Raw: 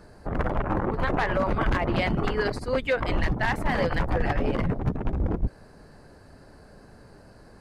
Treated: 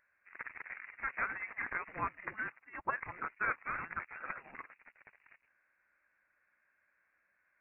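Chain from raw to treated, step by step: octave divider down 2 oct, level +1 dB; high-pass 1.2 kHz 24 dB/octave; frequency inversion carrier 3.2 kHz; upward expansion 1.5:1, over -47 dBFS; trim -3.5 dB

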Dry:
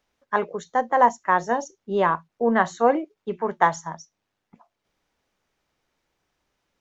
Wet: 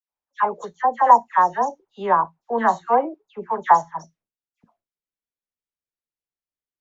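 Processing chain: gate with hold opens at -48 dBFS; peaking EQ 900 Hz +12 dB 0.96 oct, from 3.89 s -4.5 dB; phase dispersion lows, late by 101 ms, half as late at 1.9 kHz; trim -5.5 dB

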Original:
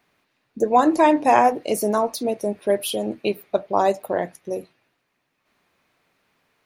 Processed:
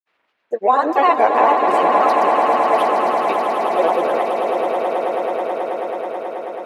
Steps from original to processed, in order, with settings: three-band isolator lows -19 dB, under 380 Hz, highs -16 dB, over 3.7 kHz; granulator, pitch spread up and down by 3 st; echo with a slow build-up 108 ms, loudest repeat 8, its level -8.5 dB; trim +3 dB

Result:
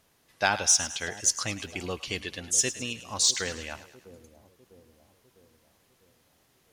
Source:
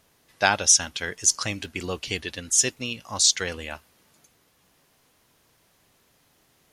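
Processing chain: in parallel at -11 dB: overload inside the chain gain 18 dB; on the sum: two-band feedback delay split 690 Hz, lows 651 ms, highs 106 ms, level -14 dB; trim -5.5 dB

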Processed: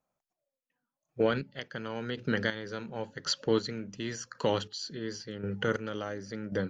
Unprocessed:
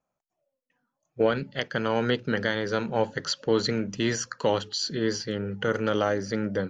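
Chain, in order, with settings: dynamic bell 710 Hz, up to -4 dB, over -33 dBFS, Q 0.88; square tremolo 0.92 Hz, depth 60%, duty 30%; trim -1.5 dB

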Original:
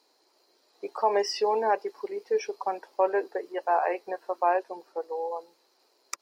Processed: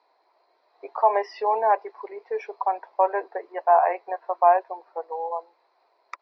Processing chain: cabinet simulation 470–3500 Hz, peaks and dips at 690 Hz +9 dB, 1 kHz +8 dB, 2.1 kHz +4 dB, 3 kHz -9 dB

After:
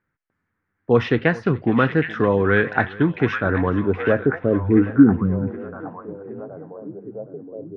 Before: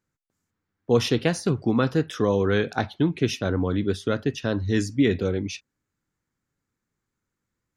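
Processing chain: low-pass sweep 1.8 kHz -> 160 Hz, 3.25–5.47 s; repeats whose band climbs or falls 769 ms, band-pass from 2.5 kHz, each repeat -0.7 oct, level -4 dB; modulated delay 420 ms, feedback 43%, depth 58 cents, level -21 dB; trim +3 dB

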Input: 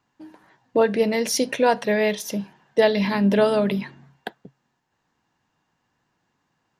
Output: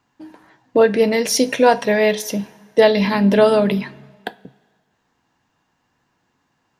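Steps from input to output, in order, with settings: two-slope reverb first 0.23 s, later 1.7 s, from -18 dB, DRR 12 dB; trim +4.5 dB

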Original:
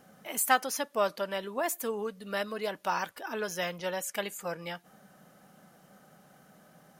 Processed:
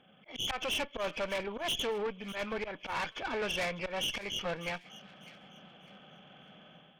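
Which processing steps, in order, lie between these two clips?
knee-point frequency compression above 2.1 kHz 4:1; slow attack 134 ms; level rider gain up to 8 dB; valve stage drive 28 dB, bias 0.75; on a send: feedback echo behind a high-pass 599 ms, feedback 30%, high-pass 2 kHz, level -15 dB; on the sum: trim -1.5 dB

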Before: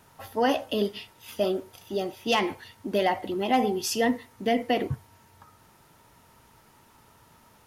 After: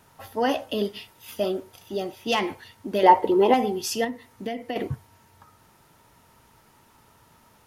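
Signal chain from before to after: 0.94–1.41 s: treble shelf 12 kHz +7.5 dB; 3.03–3.54 s: small resonant body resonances 450/910 Hz, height 17 dB, ringing for 25 ms; 4.04–4.76 s: compression 6:1, threshold -28 dBFS, peak gain reduction 9 dB

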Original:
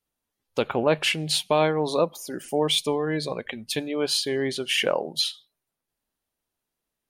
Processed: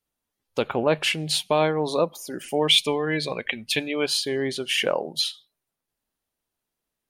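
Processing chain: 2.41–4.06 s: peaking EQ 2.5 kHz +10 dB 1.1 oct

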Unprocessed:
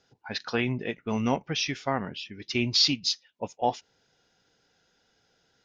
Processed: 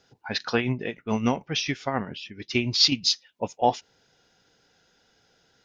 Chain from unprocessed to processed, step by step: 0.56–2.92 s: tremolo 7 Hz, depth 60%; trim +4.5 dB

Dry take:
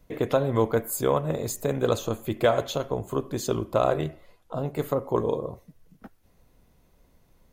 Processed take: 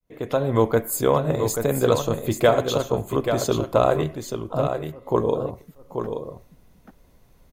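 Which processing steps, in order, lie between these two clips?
fade-in on the opening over 0.55 s; 4.67–5.07 s: slow attack 519 ms; delay 834 ms -7 dB; trim +4 dB

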